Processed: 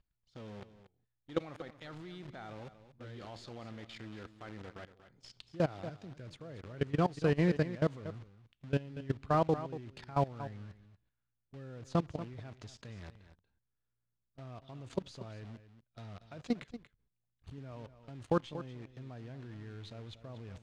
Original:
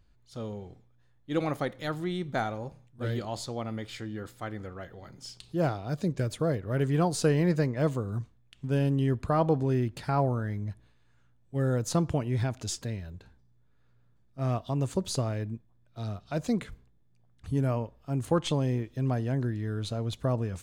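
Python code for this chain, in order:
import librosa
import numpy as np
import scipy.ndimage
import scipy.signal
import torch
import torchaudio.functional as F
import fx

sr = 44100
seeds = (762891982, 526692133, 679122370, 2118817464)

p1 = fx.quant_dither(x, sr, seeds[0], bits=6, dither='none')
p2 = x + F.gain(torch.from_numpy(p1), -4.0).numpy()
p3 = fx.high_shelf(p2, sr, hz=2200.0, db=6.5)
p4 = fx.level_steps(p3, sr, step_db=20)
p5 = scipy.signal.sosfilt(scipy.signal.butter(2, 3700.0, 'lowpass', fs=sr, output='sos'), p4)
p6 = p5 + fx.echo_single(p5, sr, ms=235, db=-13.0, dry=0)
y = F.gain(torch.from_numpy(p6), -6.5).numpy()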